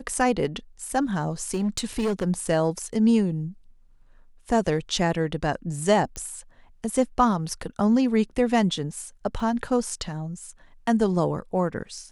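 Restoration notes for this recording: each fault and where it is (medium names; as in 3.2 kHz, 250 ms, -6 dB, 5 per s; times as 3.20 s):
1.48–2.25 s: clipped -20.5 dBFS
6.16 s: pop -19 dBFS
9.40 s: dropout 2.1 ms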